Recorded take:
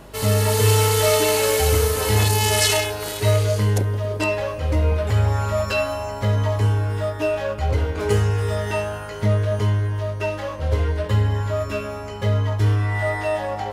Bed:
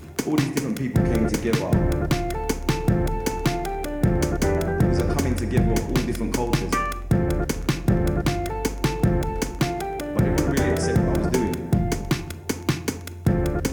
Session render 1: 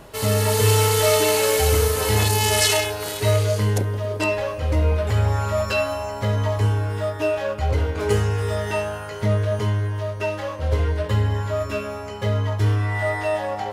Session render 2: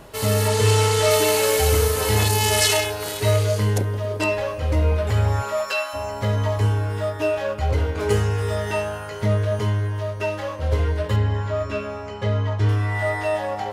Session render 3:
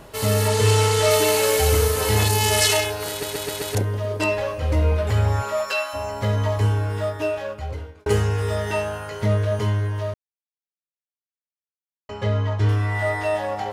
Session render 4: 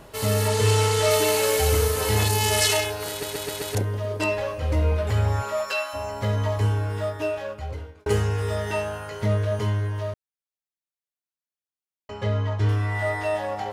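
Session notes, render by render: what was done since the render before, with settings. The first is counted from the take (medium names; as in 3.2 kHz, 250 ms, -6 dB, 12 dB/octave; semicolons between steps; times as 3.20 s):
de-hum 50 Hz, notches 7
0.48–1.11 s: low-pass 8.7 kHz; 5.41–5.93 s: high-pass 260 Hz -> 1.1 kHz; 11.16–12.69 s: distance through air 76 m
3.10 s: stutter in place 0.13 s, 5 plays; 7.04–8.06 s: fade out; 10.14–12.09 s: mute
trim -2.5 dB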